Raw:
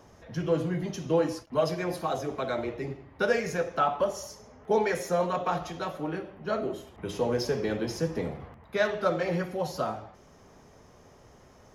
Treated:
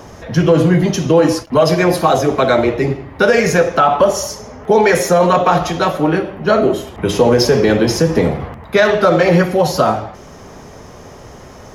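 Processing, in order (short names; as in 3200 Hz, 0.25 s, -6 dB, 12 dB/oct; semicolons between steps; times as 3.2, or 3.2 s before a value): maximiser +19.5 dB; gain -1 dB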